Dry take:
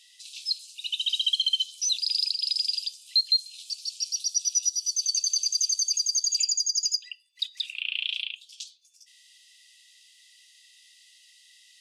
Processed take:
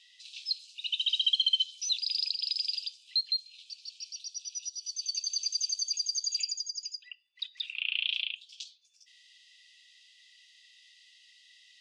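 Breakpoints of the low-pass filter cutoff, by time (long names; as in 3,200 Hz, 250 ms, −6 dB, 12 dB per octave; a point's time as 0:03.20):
0:02.76 4,000 Hz
0:03.42 2,700 Hz
0:04.50 2,700 Hz
0:05.45 4,100 Hz
0:06.33 4,100 Hz
0:07.10 2,100 Hz
0:08.14 4,500 Hz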